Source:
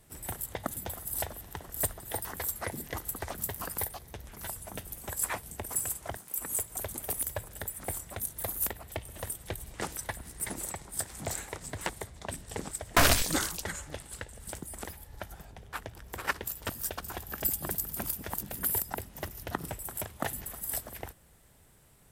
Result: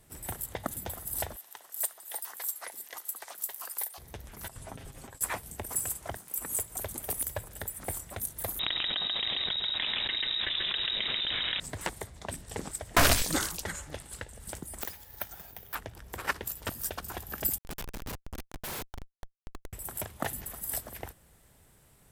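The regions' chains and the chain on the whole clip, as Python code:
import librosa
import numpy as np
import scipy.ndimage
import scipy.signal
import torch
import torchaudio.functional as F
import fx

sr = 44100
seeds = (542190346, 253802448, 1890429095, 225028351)

y = fx.chain(x, sr, fx.highpass(hz=940.0, slope=12),
    fx.peak_eq(hz=1700.0, db=-5.0, octaves=2.0), at=(1.36, 3.98))
y = fx.chain(y, sr, fx.over_compress(threshold_db=-44.0, ratio=-1.0),
    fx.air_absorb(metres=62.0),
    fx.comb(ms=7.5, depth=0.49), at=(4.48, 5.21))
y = fx.chain(y, sr, fx.echo_single(ms=137, db=-6.5),
    fx.freq_invert(carrier_hz=3800),
    fx.env_flatten(amount_pct=100), at=(8.59, 11.6))
y = fx.chain(y, sr, fx.tilt_eq(slope=2.0),
    fx.resample_bad(factor=3, down='filtered', up='zero_stuff'), at=(14.81, 15.75))
y = fx.chain(y, sr, fx.highpass(hz=580.0, slope=12),
    fx.peak_eq(hz=780.0, db=-9.5, octaves=2.4),
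    fx.schmitt(flips_db=-31.0), at=(17.58, 19.73))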